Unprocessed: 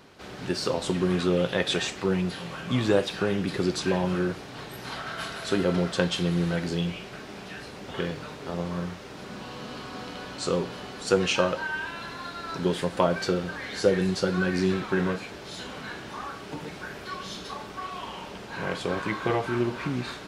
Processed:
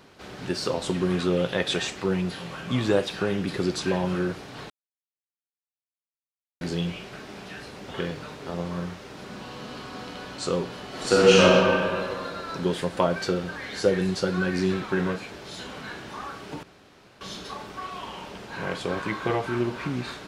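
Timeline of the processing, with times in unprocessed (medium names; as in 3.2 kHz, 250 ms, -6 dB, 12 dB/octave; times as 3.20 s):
4.70–6.61 s: mute
10.88–11.52 s: reverb throw, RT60 2.3 s, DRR -7.5 dB
16.63–17.21 s: room tone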